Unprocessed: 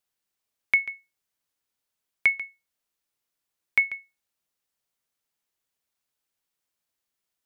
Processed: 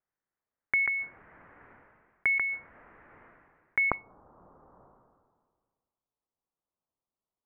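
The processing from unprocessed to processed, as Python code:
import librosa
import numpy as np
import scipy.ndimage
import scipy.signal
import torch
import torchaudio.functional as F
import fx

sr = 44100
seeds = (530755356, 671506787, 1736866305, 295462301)

y = fx.steep_lowpass(x, sr, hz=fx.steps((0.0, 2000.0), (3.89, 1200.0)), slope=48)
y = fx.dynamic_eq(y, sr, hz=1400.0, q=1.3, threshold_db=-45.0, ratio=4.0, max_db=5)
y = fx.sustainer(y, sr, db_per_s=33.0)
y = y * 10.0 ** (-1.5 / 20.0)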